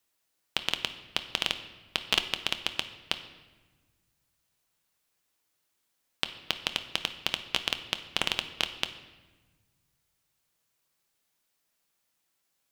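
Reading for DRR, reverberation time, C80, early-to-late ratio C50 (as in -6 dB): 8.5 dB, 1.3 s, 13.5 dB, 11.5 dB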